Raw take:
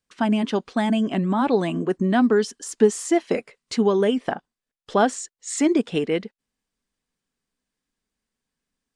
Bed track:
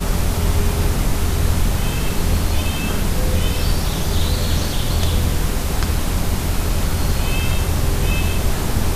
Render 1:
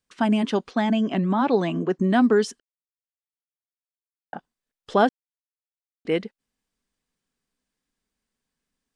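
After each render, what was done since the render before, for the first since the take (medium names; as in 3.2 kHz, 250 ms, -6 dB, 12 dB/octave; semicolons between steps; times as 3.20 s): 0.71–1.99 s: elliptic band-pass 150–6300 Hz; 2.60–4.33 s: mute; 5.09–6.05 s: mute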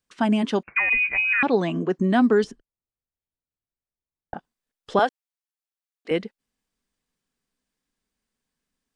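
0.63–1.43 s: frequency inversion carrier 2.7 kHz; 2.44–4.34 s: tilt EQ -4.5 dB/octave; 4.99–6.11 s: high-pass 520 Hz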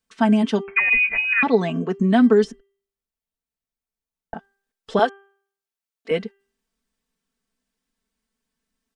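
comb 4.5 ms, depth 65%; de-hum 395.3 Hz, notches 8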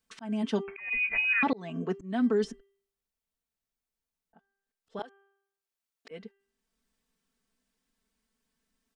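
slow attack 793 ms; peak limiter -18.5 dBFS, peak gain reduction 7.5 dB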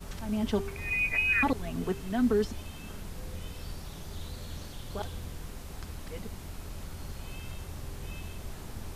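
add bed track -22 dB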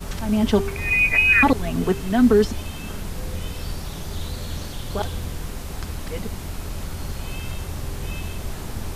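trim +10.5 dB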